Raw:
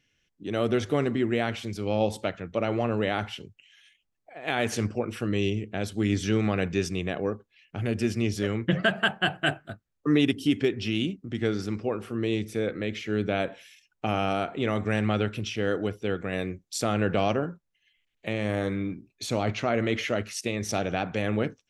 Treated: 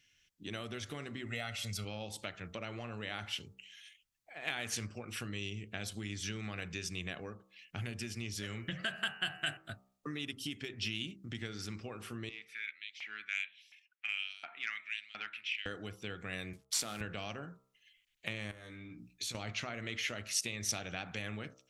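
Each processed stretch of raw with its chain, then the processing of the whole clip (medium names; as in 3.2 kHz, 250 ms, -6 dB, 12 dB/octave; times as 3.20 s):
1.26–1.85 s: treble shelf 10 kHz +6.5 dB + comb 1.5 ms, depth 78%
8.43–9.57 s: treble shelf 6.1 kHz +6.5 dB + de-hum 81.67 Hz, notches 36
12.29–15.66 s: FFT filter 260 Hz 0 dB, 500 Hz -16 dB, 1.1 kHz -13 dB, 2.3 kHz -4 dB, 6.5 kHz -24 dB + LFO high-pass saw up 1.4 Hz 740–5700 Hz + transformer saturation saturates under 1.4 kHz
16.53–17.01 s: CVSD coder 64 kbps + high-pass 160 Hz + compression 2:1, threshold -33 dBFS
18.51–19.35 s: hum notches 60/120/180/240/300 Hz + compression, threshold -40 dBFS + doubling 17 ms -5.5 dB
whole clip: compression 6:1, threshold -32 dBFS; amplifier tone stack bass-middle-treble 5-5-5; de-hum 64.44 Hz, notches 21; trim +10.5 dB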